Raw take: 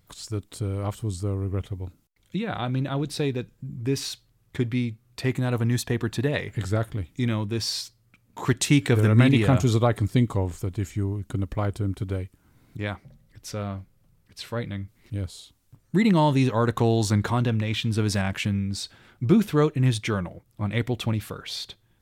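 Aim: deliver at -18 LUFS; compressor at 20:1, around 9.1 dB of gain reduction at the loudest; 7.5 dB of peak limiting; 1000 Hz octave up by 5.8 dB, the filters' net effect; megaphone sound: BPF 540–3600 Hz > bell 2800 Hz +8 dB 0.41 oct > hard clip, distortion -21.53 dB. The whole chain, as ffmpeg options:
-af "equalizer=f=1k:t=o:g=7.5,acompressor=threshold=-21dB:ratio=20,alimiter=limit=-19.5dB:level=0:latency=1,highpass=540,lowpass=3.6k,equalizer=f=2.8k:t=o:w=0.41:g=8,asoftclip=type=hard:threshold=-23dB,volume=18.5dB"

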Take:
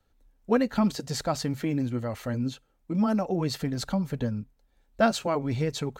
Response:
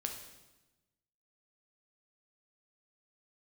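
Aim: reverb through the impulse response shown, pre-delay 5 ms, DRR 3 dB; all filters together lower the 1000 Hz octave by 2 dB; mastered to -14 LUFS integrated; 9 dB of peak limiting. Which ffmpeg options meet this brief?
-filter_complex "[0:a]equalizer=f=1k:t=o:g=-3,alimiter=limit=-20.5dB:level=0:latency=1,asplit=2[a][b];[1:a]atrim=start_sample=2205,adelay=5[c];[b][c]afir=irnorm=-1:irlink=0,volume=-3dB[d];[a][d]amix=inputs=2:normalize=0,volume=15dB"

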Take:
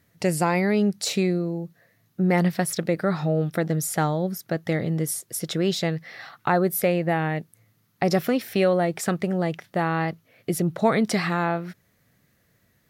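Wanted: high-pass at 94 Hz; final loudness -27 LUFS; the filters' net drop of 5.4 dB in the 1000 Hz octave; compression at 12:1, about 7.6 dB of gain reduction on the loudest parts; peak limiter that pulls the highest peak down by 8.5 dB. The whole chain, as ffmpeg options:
-af "highpass=94,equalizer=f=1k:t=o:g=-8,acompressor=threshold=-25dB:ratio=12,volume=5.5dB,alimiter=limit=-17.5dB:level=0:latency=1"

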